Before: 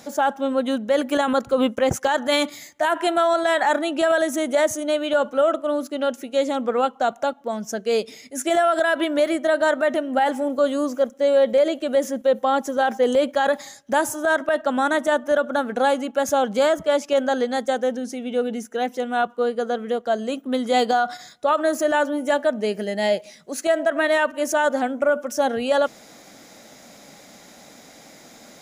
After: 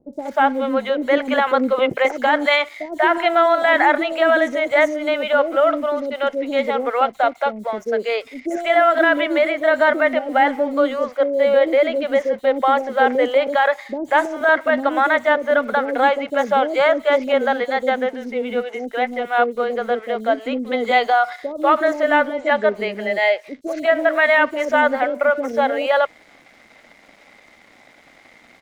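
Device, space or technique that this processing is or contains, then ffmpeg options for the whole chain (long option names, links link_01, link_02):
pocket radio on a weak battery: -filter_complex "[0:a]highpass=290,lowpass=3100,aeval=exprs='sgn(val(0))*max(abs(val(0))-0.00299,0)':channel_layout=same,equalizer=frequency=2100:width_type=o:width=0.2:gain=11,asettb=1/sr,asplit=3[link_01][link_02][link_03];[link_01]atrim=end=22.204[link_04];[link_02]atrim=start=22.2:end=22.62,asetpts=PTS-STARTPTS,afade=type=in:duration=0.004:curve=qsin,afade=type=out:start_time=0.416:duration=0.004:curve=qsin,lowpass=frequency=7300:width=0.5412,lowpass=frequency=7300:width=1.3066[link_05];[link_03]atrim=start=22.616[link_06];[link_04][link_05]acrossfade=duration=0.004:curve1=hsin:curve2=qsin[link_07];[link_07][link_06]acrossfade=duration=0.004:curve1=qsin:curve2=hsin,acrossover=split=470|5800[link_08][link_09][link_10];[link_10]adelay=130[link_11];[link_09]adelay=190[link_12];[link_08][link_12][link_11]amix=inputs=3:normalize=0,volume=5.5dB"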